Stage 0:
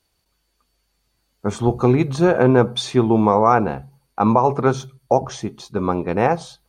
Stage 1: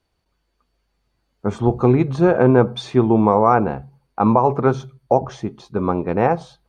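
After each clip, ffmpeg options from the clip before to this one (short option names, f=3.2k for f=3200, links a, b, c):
-af "lowpass=f=1.8k:p=1,volume=1dB"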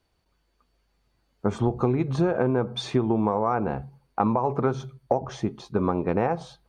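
-af "acompressor=threshold=-19dB:ratio=10"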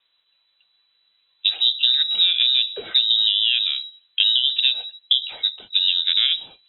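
-af "lowpass=f=3.4k:t=q:w=0.5098,lowpass=f=3.4k:t=q:w=0.6013,lowpass=f=3.4k:t=q:w=0.9,lowpass=f=3.4k:t=q:w=2.563,afreqshift=-4000,volume=4.5dB"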